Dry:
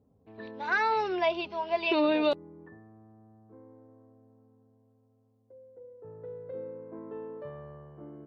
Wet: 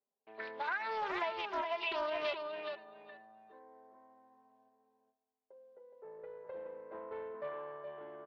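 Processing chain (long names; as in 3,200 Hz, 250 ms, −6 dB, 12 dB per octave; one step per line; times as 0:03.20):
low-pass filter 3,300 Hz 12 dB per octave
noise gate with hold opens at −55 dBFS
high-pass filter 710 Hz 12 dB per octave
notch filter 1,300 Hz, Q 24
comb filter 5 ms, depth 51%
downward compressor 12 to 1, threshold −38 dBFS, peak gain reduction 16.5 dB
repeating echo 419 ms, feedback 16%, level −5 dB
highs frequency-modulated by the lows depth 0.22 ms
level +4 dB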